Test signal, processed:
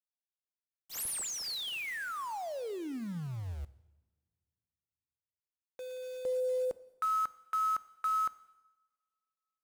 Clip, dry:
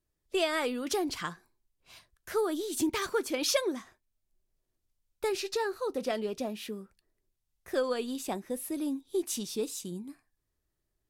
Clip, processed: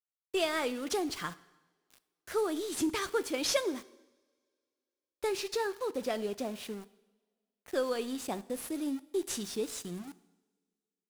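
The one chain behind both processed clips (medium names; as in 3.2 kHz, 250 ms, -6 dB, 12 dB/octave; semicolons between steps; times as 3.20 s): CVSD coder 64 kbps; small samples zeroed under -44 dBFS; two-slope reverb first 0.94 s, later 2.7 s, from -24 dB, DRR 16 dB; trim -1.5 dB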